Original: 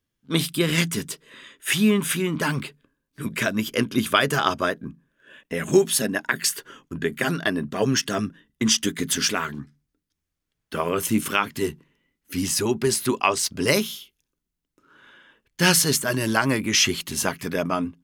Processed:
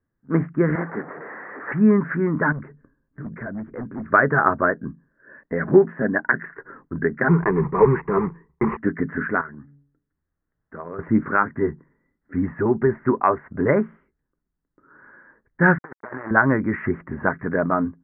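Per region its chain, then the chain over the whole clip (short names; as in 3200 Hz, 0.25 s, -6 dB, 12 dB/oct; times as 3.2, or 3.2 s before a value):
0.75–1.72 delta modulation 16 kbps, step -30.5 dBFS + HPF 290 Hz
2.52–4.12 low shelf 270 Hz +7 dB + hard clip -19.5 dBFS + compressor 2.5:1, threshold -38 dBFS
7.28–8.77 block floating point 3-bit + ripple EQ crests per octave 0.76, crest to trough 17 dB
9.41–10.99 de-hum 141.7 Hz, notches 6 + compressor 1.5:1, threshold -57 dBFS
15.78–16.31 switching dead time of 0.3 ms + HPF 1200 Hz 6 dB/oct + negative-ratio compressor -35 dBFS, ratio -0.5
whole clip: steep low-pass 1900 Hz 72 dB/oct; dynamic EQ 1500 Hz, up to +4 dB, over -42 dBFS, Q 7.4; gain +3.5 dB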